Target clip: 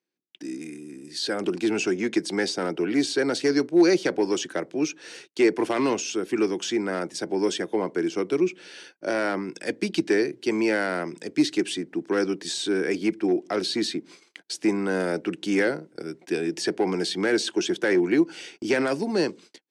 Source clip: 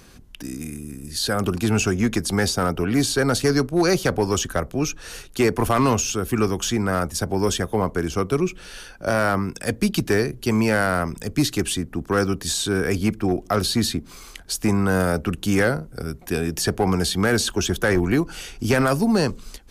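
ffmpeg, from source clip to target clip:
-af "highpass=f=200:w=0.5412,highpass=f=200:w=1.3066,equalizer=f=230:t=q:w=4:g=-7,equalizer=f=330:t=q:w=4:g=9,equalizer=f=720:t=q:w=4:g=-3,equalizer=f=1.2k:t=q:w=4:g=-9,equalizer=f=2.1k:t=q:w=4:g=4,equalizer=f=6.8k:t=q:w=4:g=-5,lowpass=f=7.9k:w=0.5412,lowpass=f=7.9k:w=1.3066,agate=range=-33dB:threshold=-42dB:ratio=16:detection=peak,volume=-3.5dB"

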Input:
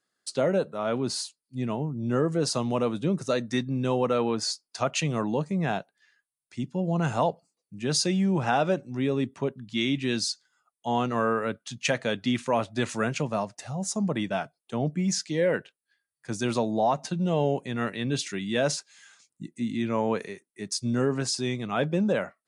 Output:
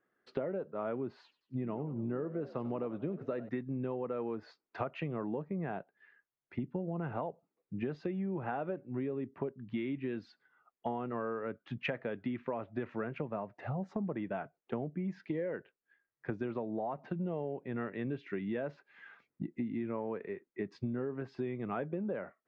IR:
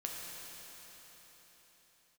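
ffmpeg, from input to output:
-filter_complex "[0:a]lowpass=f=2.2k:w=0.5412,lowpass=f=2.2k:w=1.3066,equalizer=f=380:t=o:w=0.89:g=6,acompressor=threshold=-35dB:ratio=16,asettb=1/sr,asplit=3[a][b][c];[a]atrim=end=1.224[d];[b]atrim=start=1.22:end=3.49,asetpts=PTS-STARTPTS,afade=t=in:d=0.004:c=qsin,afade=t=out:st=2.266:d=0.004:c=qsin,asplit=5[e][f][g][h][i];[f]adelay=94,afreqshift=62,volume=-16dB[j];[g]adelay=188,afreqshift=124,volume=-22dB[k];[h]adelay=282,afreqshift=186,volume=-28dB[l];[i]adelay=376,afreqshift=248,volume=-34.1dB[m];[e][j][k][l][m]amix=inputs=5:normalize=0,atrim=end_sample=100107[n];[c]atrim=start=3.486[o];[d][n]acrossfade=d=0.004:c1=hsin:c2=qsin[p];[p][o]acrossfade=d=0.004:c1=qsin:c2=hsin,volume=2dB"

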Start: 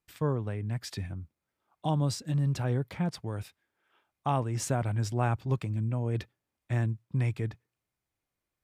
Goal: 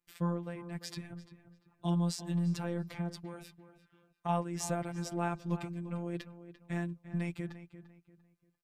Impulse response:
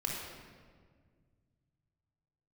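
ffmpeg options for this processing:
-filter_complex "[0:a]asplit=3[a][b][c];[a]afade=t=out:st=2.97:d=0.02[d];[b]acompressor=threshold=-32dB:ratio=6,afade=t=in:st=2.97:d=0.02,afade=t=out:st=4.28:d=0.02[e];[c]afade=t=in:st=4.28:d=0.02[f];[d][e][f]amix=inputs=3:normalize=0,afftfilt=real='hypot(re,im)*cos(PI*b)':imag='0':win_size=1024:overlap=0.75,asplit=2[g][h];[h]adelay=345,lowpass=f=2.7k:p=1,volume=-13dB,asplit=2[i][j];[j]adelay=345,lowpass=f=2.7k:p=1,volume=0.32,asplit=2[k][l];[l]adelay=345,lowpass=f=2.7k:p=1,volume=0.32[m];[i][k][m]amix=inputs=3:normalize=0[n];[g][n]amix=inputs=2:normalize=0"

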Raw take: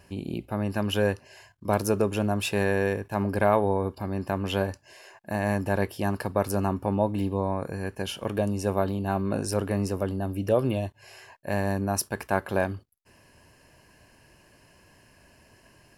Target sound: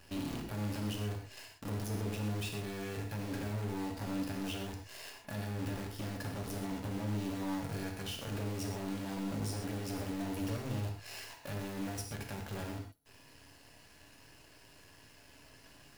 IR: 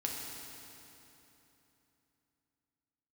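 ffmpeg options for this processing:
-filter_complex "[0:a]equalizer=f=3.9k:t=o:w=1.4:g=6,acrossover=split=270[a][b];[b]acompressor=threshold=-36dB:ratio=12[c];[a][c]amix=inputs=2:normalize=0,alimiter=level_in=0.5dB:limit=-24dB:level=0:latency=1:release=11,volume=-0.5dB,asoftclip=type=tanh:threshold=-37.5dB,acrusher=bits=8:dc=4:mix=0:aa=0.000001[d];[1:a]atrim=start_sample=2205,atrim=end_sample=6174[e];[d][e]afir=irnorm=-1:irlink=0"

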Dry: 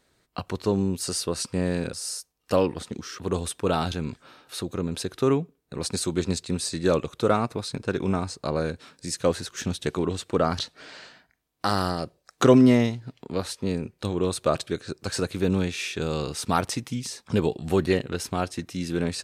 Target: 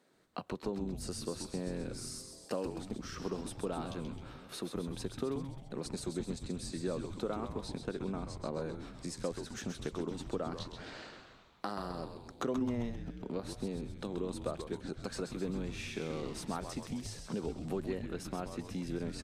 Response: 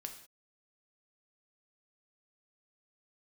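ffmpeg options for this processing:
-filter_complex "[0:a]acompressor=threshold=-35dB:ratio=4,highpass=f=160:w=0.5412,highpass=f=160:w=1.3066,tiltshelf=f=1.4k:g=4,asplit=2[a][b];[b]asplit=8[c][d][e][f][g][h][i][j];[c]adelay=131,afreqshift=-140,volume=-7dB[k];[d]adelay=262,afreqshift=-280,volume=-11.3dB[l];[e]adelay=393,afreqshift=-420,volume=-15.6dB[m];[f]adelay=524,afreqshift=-560,volume=-19.9dB[n];[g]adelay=655,afreqshift=-700,volume=-24.2dB[o];[h]adelay=786,afreqshift=-840,volume=-28.5dB[p];[i]adelay=917,afreqshift=-980,volume=-32.8dB[q];[j]adelay=1048,afreqshift=-1120,volume=-37.1dB[r];[k][l][m][n][o][p][q][r]amix=inputs=8:normalize=0[s];[a][s]amix=inputs=2:normalize=0,volume=-4dB"

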